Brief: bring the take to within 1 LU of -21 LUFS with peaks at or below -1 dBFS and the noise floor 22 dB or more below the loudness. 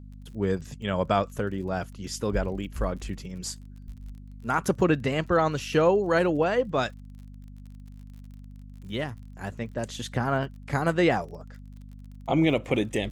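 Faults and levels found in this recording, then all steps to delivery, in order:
ticks 41/s; hum 50 Hz; harmonics up to 250 Hz; hum level -41 dBFS; loudness -27.0 LUFS; peak -10.0 dBFS; loudness target -21.0 LUFS
-> de-click; de-hum 50 Hz, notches 5; gain +6 dB

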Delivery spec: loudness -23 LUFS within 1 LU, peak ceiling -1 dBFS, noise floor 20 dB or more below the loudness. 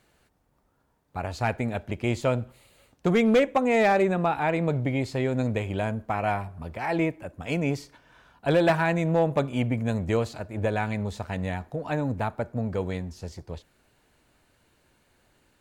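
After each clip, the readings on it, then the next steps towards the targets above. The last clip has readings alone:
clipped 0.3%; flat tops at -14.5 dBFS; loudness -26.5 LUFS; peak -14.5 dBFS; loudness target -23.0 LUFS
-> clip repair -14.5 dBFS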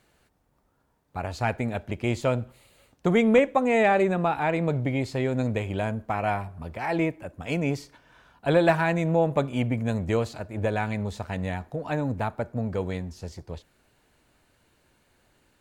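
clipped 0.0%; loudness -26.5 LUFS; peak -8.0 dBFS; loudness target -23.0 LUFS
-> gain +3.5 dB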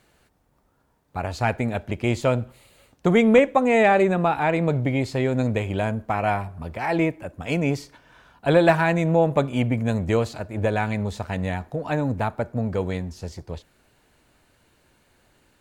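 loudness -22.5 LUFS; peak -4.5 dBFS; noise floor -65 dBFS

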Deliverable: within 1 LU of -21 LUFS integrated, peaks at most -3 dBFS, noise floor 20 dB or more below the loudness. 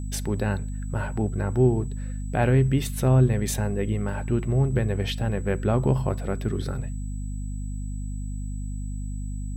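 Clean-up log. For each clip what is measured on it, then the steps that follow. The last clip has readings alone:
hum 50 Hz; harmonics up to 250 Hz; hum level -28 dBFS; steady tone 7900 Hz; tone level -50 dBFS; loudness -26.0 LUFS; peak -9.0 dBFS; loudness target -21.0 LUFS
-> de-hum 50 Hz, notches 5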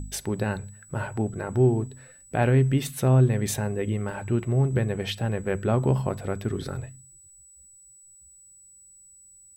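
hum none; steady tone 7900 Hz; tone level -50 dBFS
-> notch 7900 Hz, Q 30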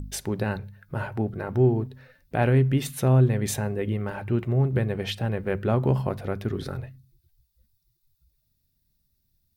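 steady tone none; loudness -25.5 LUFS; peak -10.5 dBFS; loudness target -21.0 LUFS
-> gain +4.5 dB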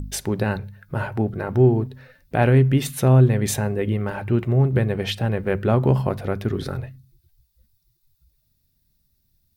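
loudness -21.0 LUFS; peak -6.0 dBFS; noise floor -68 dBFS

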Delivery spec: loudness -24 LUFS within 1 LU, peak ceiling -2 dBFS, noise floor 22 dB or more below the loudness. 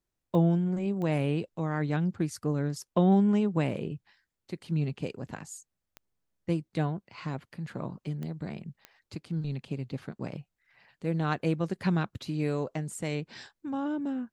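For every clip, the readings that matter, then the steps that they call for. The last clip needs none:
clicks 5; loudness -31.0 LUFS; peak -12.5 dBFS; loudness target -24.0 LUFS
-> de-click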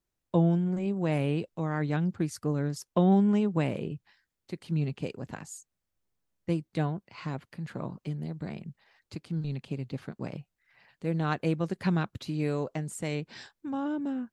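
clicks 0; loudness -31.0 LUFS; peak -12.5 dBFS; loudness target -24.0 LUFS
-> gain +7 dB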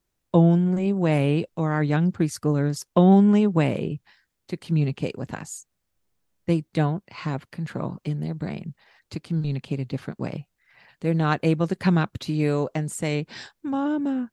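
loudness -24.0 LUFS; peak -5.5 dBFS; noise floor -78 dBFS

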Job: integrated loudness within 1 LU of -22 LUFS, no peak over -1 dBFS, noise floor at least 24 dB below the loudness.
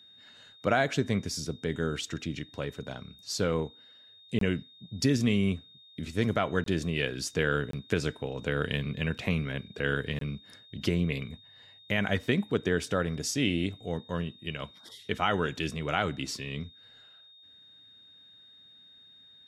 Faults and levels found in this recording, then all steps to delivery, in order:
dropouts 4; longest dropout 23 ms; steady tone 3700 Hz; tone level -53 dBFS; loudness -31.0 LUFS; peak -12.0 dBFS; loudness target -22.0 LUFS
-> interpolate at 4.39/6.64/7.71/10.19, 23 ms; notch 3700 Hz, Q 30; gain +9 dB

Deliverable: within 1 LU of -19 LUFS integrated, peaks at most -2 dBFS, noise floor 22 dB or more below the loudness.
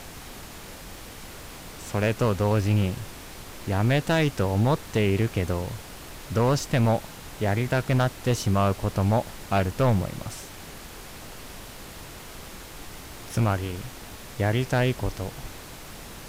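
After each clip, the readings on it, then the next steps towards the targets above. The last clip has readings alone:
clipped 1.3%; flat tops at -15.5 dBFS; noise floor -42 dBFS; noise floor target -48 dBFS; loudness -25.5 LUFS; peak -15.5 dBFS; loudness target -19.0 LUFS
-> clip repair -15.5 dBFS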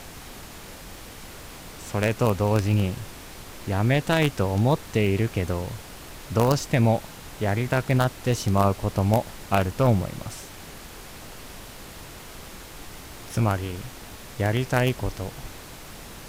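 clipped 0.0%; noise floor -42 dBFS; noise floor target -47 dBFS
-> noise print and reduce 6 dB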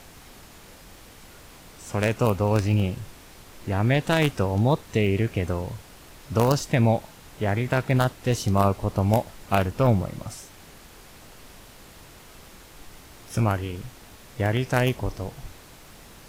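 noise floor -48 dBFS; loudness -24.5 LUFS; peak -6.5 dBFS; loudness target -19.0 LUFS
-> gain +5.5 dB; limiter -2 dBFS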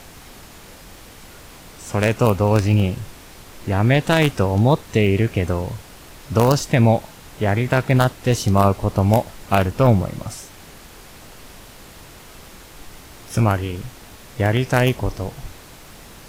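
loudness -19.0 LUFS; peak -2.0 dBFS; noise floor -43 dBFS

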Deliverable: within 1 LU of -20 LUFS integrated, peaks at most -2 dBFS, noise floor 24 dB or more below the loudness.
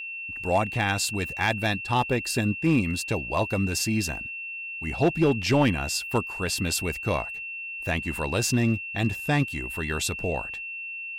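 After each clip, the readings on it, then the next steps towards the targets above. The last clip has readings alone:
clipped 0.4%; flat tops at -14.0 dBFS; steady tone 2700 Hz; tone level -33 dBFS; loudness -26.5 LUFS; peak -14.0 dBFS; loudness target -20.0 LUFS
-> clip repair -14 dBFS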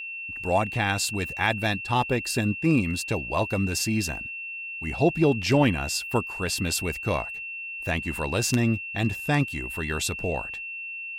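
clipped 0.0%; steady tone 2700 Hz; tone level -33 dBFS
-> notch 2700 Hz, Q 30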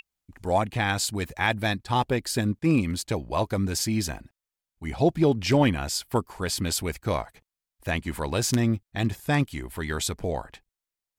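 steady tone none; loudness -26.5 LUFS; peak -5.5 dBFS; loudness target -20.0 LUFS
-> gain +6.5 dB; limiter -2 dBFS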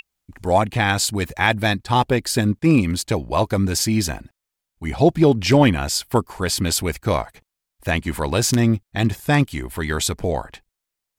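loudness -20.0 LUFS; peak -2.0 dBFS; noise floor -83 dBFS

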